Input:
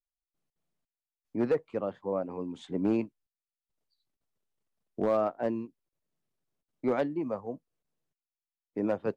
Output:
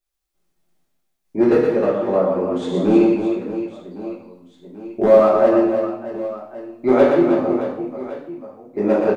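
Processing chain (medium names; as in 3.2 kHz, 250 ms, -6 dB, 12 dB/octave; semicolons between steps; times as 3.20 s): reverse bouncing-ball echo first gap 120 ms, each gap 1.6×, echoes 5; two-slope reverb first 0.55 s, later 1.6 s, DRR -5.5 dB; trim +6 dB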